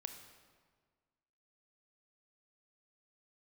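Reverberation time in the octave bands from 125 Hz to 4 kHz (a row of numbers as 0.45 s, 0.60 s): 1.8 s, 1.8 s, 1.7 s, 1.6 s, 1.4 s, 1.1 s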